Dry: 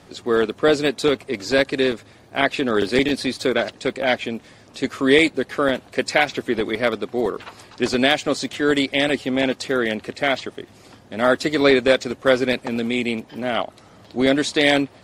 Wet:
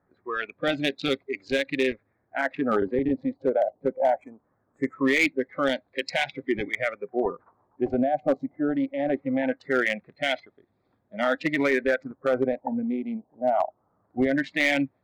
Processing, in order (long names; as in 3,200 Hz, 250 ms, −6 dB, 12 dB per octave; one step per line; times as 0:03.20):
adaptive Wiener filter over 15 samples
0:03.98–0:04.94: high shelf with overshoot 5,900 Hz +13 dB, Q 3
brickwall limiter −11 dBFS, peak gain reduction 9.5 dB
noise reduction from a noise print of the clip's start 21 dB
auto-filter low-pass sine 0.21 Hz 740–3,500 Hz
hard clipping −12.5 dBFS, distortion −22 dB
level −2 dB